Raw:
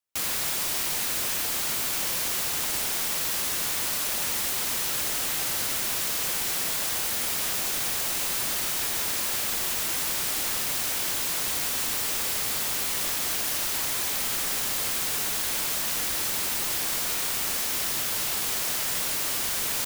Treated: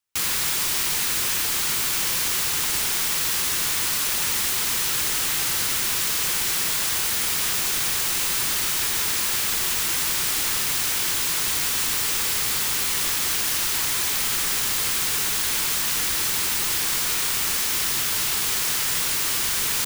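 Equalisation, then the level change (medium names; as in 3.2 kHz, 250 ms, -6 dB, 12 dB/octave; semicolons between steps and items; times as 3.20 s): fifteen-band graphic EQ 250 Hz -4 dB, 630 Hz -9 dB, 16 kHz -3 dB; +5.5 dB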